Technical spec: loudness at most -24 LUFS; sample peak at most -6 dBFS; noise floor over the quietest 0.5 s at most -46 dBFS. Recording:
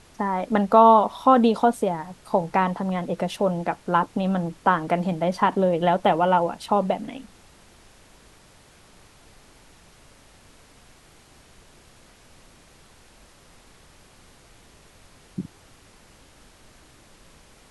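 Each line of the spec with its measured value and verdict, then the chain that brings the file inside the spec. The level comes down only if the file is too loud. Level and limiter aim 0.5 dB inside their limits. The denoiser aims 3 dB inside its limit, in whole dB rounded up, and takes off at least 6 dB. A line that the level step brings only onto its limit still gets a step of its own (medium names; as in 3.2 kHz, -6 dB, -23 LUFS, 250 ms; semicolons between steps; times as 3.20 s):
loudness -21.5 LUFS: fail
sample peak -3.5 dBFS: fail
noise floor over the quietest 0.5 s -53 dBFS: pass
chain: trim -3 dB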